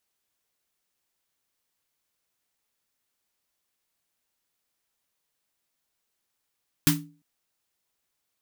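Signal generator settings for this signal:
synth snare length 0.35 s, tones 160 Hz, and 290 Hz, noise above 890 Hz, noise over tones 0.5 dB, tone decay 0.39 s, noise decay 0.21 s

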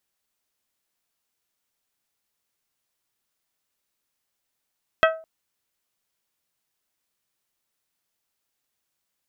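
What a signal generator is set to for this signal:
struck glass bell, length 0.21 s, lowest mode 645 Hz, modes 6, decay 0.38 s, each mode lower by 2 dB, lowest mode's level −13 dB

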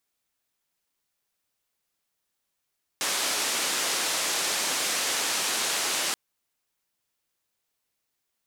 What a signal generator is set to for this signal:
band-limited noise 290–8,400 Hz, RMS −27.5 dBFS 3.13 s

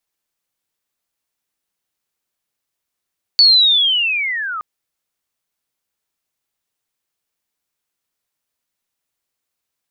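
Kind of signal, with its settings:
glide linear 4,500 Hz → 1,200 Hz −5.5 dBFS → −22 dBFS 1.22 s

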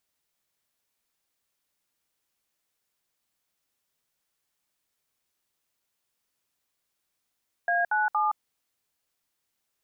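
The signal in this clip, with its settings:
touch tones "A97", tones 169 ms, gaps 64 ms, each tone −24.5 dBFS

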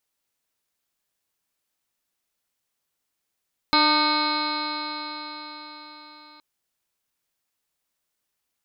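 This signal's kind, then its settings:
stiff-string partials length 2.67 s, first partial 299 Hz, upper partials −7/2.5/3/−4.5/−17/−1/−9.5/−18/−12.5/−6/4/−12/−8.5 dB, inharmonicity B 0.0022, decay 4.92 s, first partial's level −24 dB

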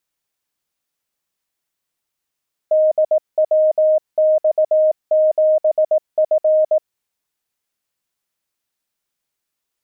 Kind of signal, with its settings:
Morse code "DWX7F" 18 words per minute 622 Hz −10.5 dBFS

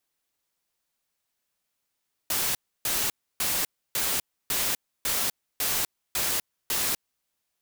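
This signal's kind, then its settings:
noise bursts white, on 0.25 s, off 0.30 s, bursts 9, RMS −26.5 dBFS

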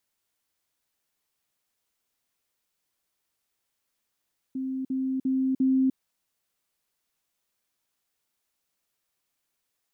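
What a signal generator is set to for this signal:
level staircase 263 Hz −28 dBFS, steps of 3 dB, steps 4, 0.30 s 0.05 s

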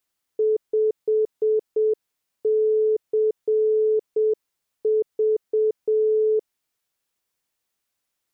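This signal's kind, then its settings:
Morse code "5CV" 7 words per minute 433 Hz −16.5 dBFS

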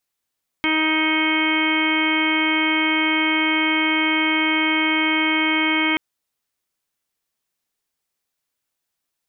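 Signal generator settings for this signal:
steady harmonic partials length 5.33 s, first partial 314 Hz, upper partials −13/−6.5/−8/−8.5/−9.5/1/−8/−19.5/−5 dB, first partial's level −21.5 dB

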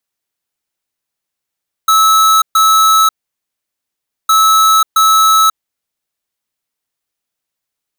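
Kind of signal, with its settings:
beeps in groups square 1,300 Hz, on 0.54 s, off 0.13 s, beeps 2, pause 1.20 s, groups 2, −8.5 dBFS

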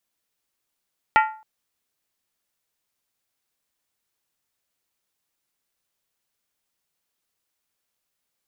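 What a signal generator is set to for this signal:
struck skin length 0.27 s, lowest mode 871 Hz, modes 8, decay 0.41 s, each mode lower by 3.5 dB, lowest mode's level −11.5 dB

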